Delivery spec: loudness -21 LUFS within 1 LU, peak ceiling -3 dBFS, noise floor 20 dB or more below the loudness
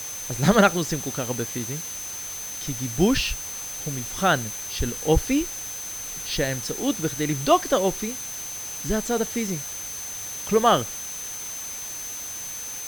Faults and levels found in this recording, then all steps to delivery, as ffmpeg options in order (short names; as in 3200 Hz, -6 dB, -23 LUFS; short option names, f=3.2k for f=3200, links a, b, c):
steady tone 6200 Hz; tone level -33 dBFS; noise floor -34 dBFS; noise floor target -45 dBFS; loudness -25.0 LUFS; peak -3.5 dBFS; loudness target -21.0 LUFS
-> -af "bandreject=f=6.2k:w=30"
-af "afftdn=nr=11:nf=-34"
-af "volume=4dB,alimiter=limit=-3dB:level=0:latency=1"